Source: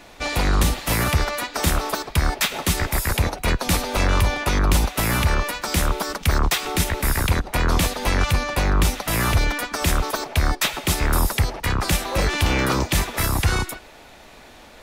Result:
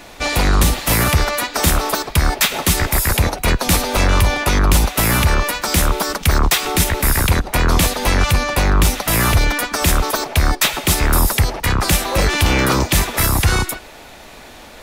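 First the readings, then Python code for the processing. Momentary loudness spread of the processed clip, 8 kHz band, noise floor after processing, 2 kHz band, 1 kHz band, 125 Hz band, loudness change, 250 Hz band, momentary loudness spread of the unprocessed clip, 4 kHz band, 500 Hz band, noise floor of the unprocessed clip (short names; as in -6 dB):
4 LU, +7.0 dB, -39 dBFS, +5.0 dB, +5.0 dB, +4.5 dB, +5.5 dB, +5.0 dB, 4 LU, +5.5 dB, +5.0 dB, -45 dBFS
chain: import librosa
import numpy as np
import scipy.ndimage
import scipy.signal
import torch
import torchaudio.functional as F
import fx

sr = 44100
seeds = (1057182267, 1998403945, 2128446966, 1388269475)

p1 = 10.0 ** (-21.0 / 20.0) * np.tanh(x / 10.0 ** (-21.0 / 20.0))
p2 = x + F.gain(torch.from_numpy(p1), -7.0).numpy()
p3 = fx.high_shelf(p2, sr, hz=8000.0, db=4.5)
y = F.gain(torch.from_numpy(p3), 3.0).numpy()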